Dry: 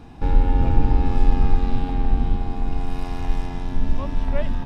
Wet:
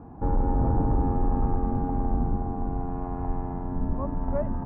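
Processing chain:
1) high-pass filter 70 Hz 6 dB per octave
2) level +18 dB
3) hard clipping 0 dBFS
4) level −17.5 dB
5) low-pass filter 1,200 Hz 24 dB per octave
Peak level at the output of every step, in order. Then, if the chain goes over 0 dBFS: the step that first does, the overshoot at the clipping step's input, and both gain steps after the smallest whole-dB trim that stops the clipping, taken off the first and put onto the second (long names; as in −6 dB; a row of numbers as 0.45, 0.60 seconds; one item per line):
−10.5, +7.5, 0.0, −17.5, −16.5 dBFS
step 2, 7.5 dB
step 2 +10 dB, step 4 −9.5 dB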